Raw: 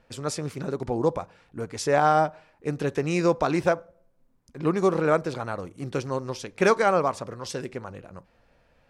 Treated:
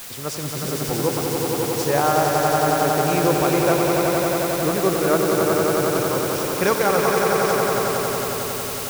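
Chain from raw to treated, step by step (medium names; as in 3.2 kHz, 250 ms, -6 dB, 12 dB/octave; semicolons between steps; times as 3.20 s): word length cut 6-bit, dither triangular; echo with a slow build-up 91 ms, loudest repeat 5, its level -5 dB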